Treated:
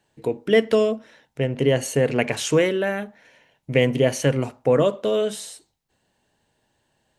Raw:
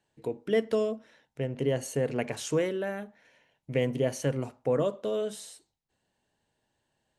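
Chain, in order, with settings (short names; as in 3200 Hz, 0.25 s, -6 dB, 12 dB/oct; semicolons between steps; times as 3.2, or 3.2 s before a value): dynamic EQ 2500 Hz, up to +5 dB, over -49 dBFS, Q 1.1; gain +8.5 dB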